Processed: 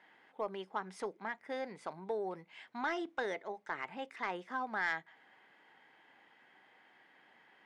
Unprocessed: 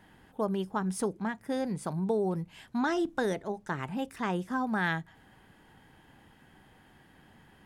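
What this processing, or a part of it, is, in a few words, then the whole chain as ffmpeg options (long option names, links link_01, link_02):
intercom: -af "highpass=480,lowpass=4300,equalizer=frequency=2100:width_type=o:width=0.26:gain=8.5,asoftclip=type=tanh:threshold=-20dB,volume=-3.5dB"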